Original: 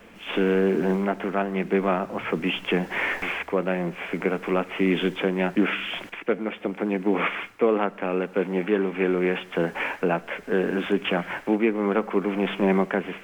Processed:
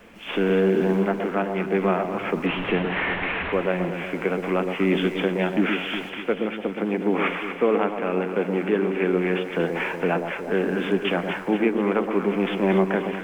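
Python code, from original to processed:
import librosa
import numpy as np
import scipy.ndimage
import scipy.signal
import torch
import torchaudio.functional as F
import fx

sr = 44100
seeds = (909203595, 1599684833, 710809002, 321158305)

y = fx.delta_mod(x, sr, bps=16000, step_db=-24.0, at=(2.46, 3.53))
y = fx.echo_alternate(y, sr, ms=120, hz=960.0, feedback_pct=73, wet_db=-6)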